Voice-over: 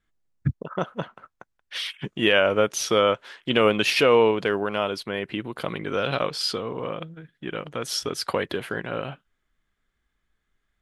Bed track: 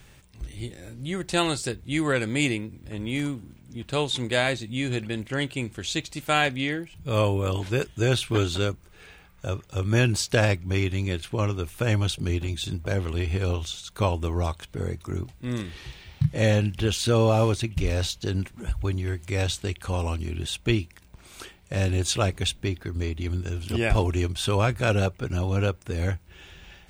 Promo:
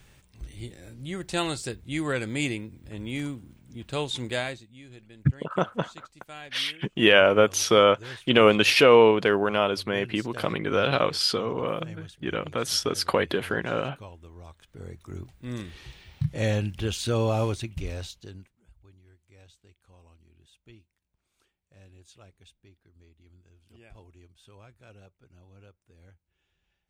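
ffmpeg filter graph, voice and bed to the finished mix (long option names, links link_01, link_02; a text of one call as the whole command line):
ffmpeg -i stem1.wav -i stem2.wav -filter_complex "[0:a]adelay=4800,volume=2dB[link_01];[1:a]volume=12dB,afade=type=out:start_time=4.3:duration=0.38:silence=0.149624,afade=type=in:start_time=14.44:duration=1.19:silence=0.158489,afade=type=out:start_time=17.44:duration=1.11:silence=0.0562341[link_02];[link_01][link_02]amix=inputs=2:normalize=0" out.wav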